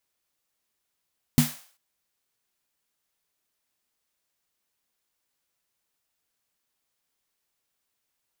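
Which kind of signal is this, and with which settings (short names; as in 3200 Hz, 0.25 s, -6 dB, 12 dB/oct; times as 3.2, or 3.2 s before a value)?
snare drum length 0.39 s, tones 150 Hz, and 240 Hz, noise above 590 Hz, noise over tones -10 dB, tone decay 0.20 s, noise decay 0.48 s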